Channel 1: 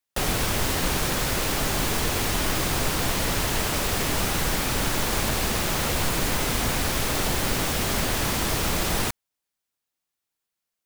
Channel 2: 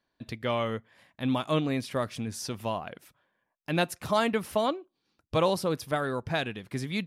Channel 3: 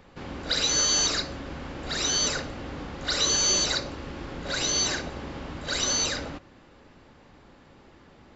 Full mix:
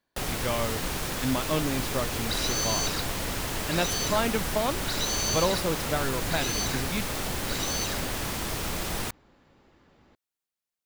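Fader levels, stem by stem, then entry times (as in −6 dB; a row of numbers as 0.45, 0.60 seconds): −6.5, −1.0, −7.0 decibels; 0.00, 0.00, 1.80 seconds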